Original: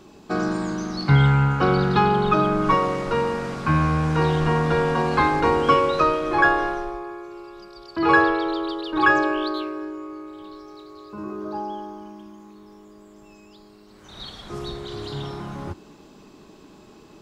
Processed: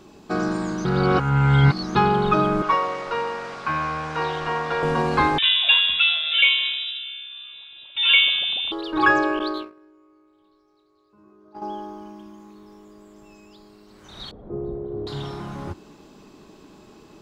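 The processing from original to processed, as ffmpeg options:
-filter_complex "[0:a]asettb=1/sr,asplit=3[a][b][c];[a]atrim=end=2.624[d];[b]atrim=start=2.62:end=4.83,asetpts=PTS-STARTPTS,afade=t=in:d=0.004:c=qsin,afade=t=out:st=2.206:d=0.004:c=qsin,acrossover=split=480 6900:gain=0.178 1 0.224[e][f][g];[e][f][g]amix=inputs=3:normalize=0[h];[c]atrim=start=4.826[i];[d][h]acrossfade=d=0.004:c1=hsin:c2=qsin[j];[j][i]acrossfade=d=0.004:c1=qsin:c2=hsin,asettb=1/sr,asplit=3[k][l][m];[k]atrim=end=5.384[n];[l]atrim=start=5.38:end=8.72,asetpts=PTS-STARTPTS,afade=t=in:d=0.004:c=qsin,afade=t=out:st=3.336:d=0.004:c=qsin,lowpass=f=3.3k:t=q:w=0.5098,lowpass=f=3.3k:t=q:w=0.6013,lowpass=f=3.3k:t=q:w=0.9,lowpass=f=3.3k:t=q:w=2.563,afreqshift=-3900[o];[m]atrim=start=8.716[p];[n][o]acrossfade=d=0.004:c1=hsin:c2=qsin[q];[q][p]acrossfade=d=0.004:c1=qsin:c2=hsin,asettb=1/sr,asplit=3[r][s][t];[r]atrim=end=9.394[u];[s]atrim=start=9.39:end=11.62,asetpts=PTS-STARTPTS,afade=t=in:d=0.004:c=qsin,afade=t=out:st=2.226:d=0.004:c=qsin,agate=range=-21dB:threshold=-28dB:ratio=16:release=100:detection=peak[v];[t]atrim=start=11.616[w];[u][v]acrossfade=d=0.004:c1=hsin:c2=qsin[x];[x][w]acrossfade=d=0.004:c1=qsin:c2=hsin,asettb=1/sr,asplit=3[y][z][aa];[y]atrim=end=14.314[ab];[z]atrim=start=14.31:end=15.07,asetpts=PTS-STARTPTS,afade=t=in:d=0.004:c=qsin,afade=t=out:st=0.756:d=0.004:c=qsin,lowpass=f=490:t=q:w=1.7[ac];[aa]atrim=start=15.066[ad];[ab][ac]acrossfade=d=0.004:c1=hsin:c2=qsin[ae];[ae][ad]acrossfade=d=0.004:c1=qsin:c2=hsin,asplit=3[af][ag][ah];[af]atrim=end=0.852[ai];[ag]atrim=start=0.848:end=1.952,asetpts=PTS-STARTPTS,areverse[aj];[ah]atrim=start=1.948[ak];[ai][aj]acrossfade=d=0.004:c1=hsin:c2=hsin[al];[al][ak]acrossfade=d=0.004:c1=hsin:c2=hsin"

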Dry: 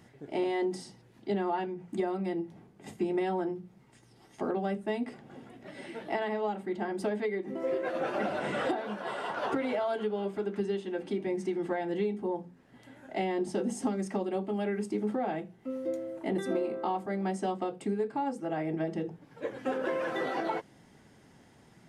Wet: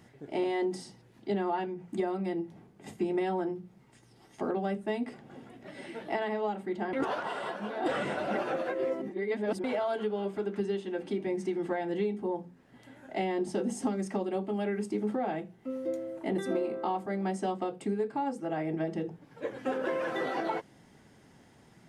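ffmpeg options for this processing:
-filter_complex "[0:a]asplit=3[a][b][c];[a]atrim=end=6.932[d];[b]atrim=start=6.928:end=9.642,asetpts=PTS-STARTPTS,areverse[e];[c]atrim=start=9.638[f];[d][e]acrossfade=d=0.004:c1=hsin:c2=hsin[g];[g][f]acrossfade=d=0.004:c1=hsin:c2=hsin"

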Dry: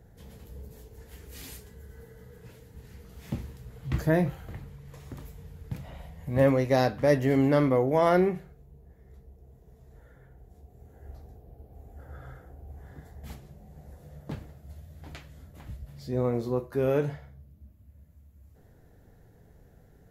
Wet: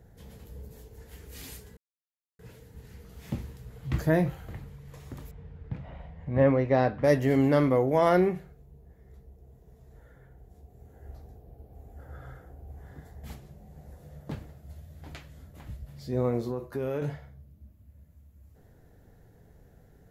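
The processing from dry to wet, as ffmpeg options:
-filter_complex "[0:a]asettb=1/sr,asplit=3[a][b][c];[a]atrim=end=5.314[d];[b]atrim=start=5.31:end=7.04,asetpts=PTS-STARTPTS,afade=t=in:d=0.004:c=qsin,afade=t=out:st=1.726:d=0.004:c=qsin,lowpass=2.4k[e];[c]atrim=start=7.036[f];[d][e]acrossfade=d=0.004:c1=hsin:c2=qsin[g];[g][f]acrossfade=d=0.004:c1=qsin:c2=hsin,asettb=1/sr,asplit=3[h][i][j];[h]atrim=end=16.494[k];[i]atrim=start=16.49:end=17.02,asetpts=PTS-STARTPTS,afade=t=in:d=0.004:c=qsin,afade=t=out:st=0.526:d=0.004:c=qsin,acompressor=threshold=-27dB:ratio=6:attack=3.2:release=140:knee=1:detection=peak[l];[j]atrim=start=17.016[m];[k][l]acrossfade=d=0.004:c1=hsin:c2=qsin[n];[n][m]acrossfade=d=0.004:c1=qsin:c2=hsin,asplit=3[o][p][q];[o]atrim=end=1.77,asetpts=PTS-STARTPTS,afade=t=out:st=1.766:d=0.004:c=hsin[r];[p]atrim=start=1.77:end=2.39,asetpts=PTS-STARTPTS,volume=0[s];[q]atrim=start=2.39,asetpts=PTS-STARTPTS,afade=t=in:d=0.004:c=hsin[t];[r][s][t]concat=n=3:v=0:a=1"

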